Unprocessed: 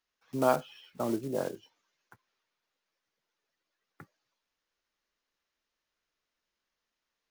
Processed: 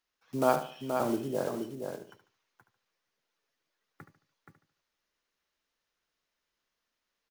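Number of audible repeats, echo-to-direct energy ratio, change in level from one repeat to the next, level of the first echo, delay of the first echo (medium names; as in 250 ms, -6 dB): 6, -4.5 dB, no regular repeats, -11.0 dB, 73 ms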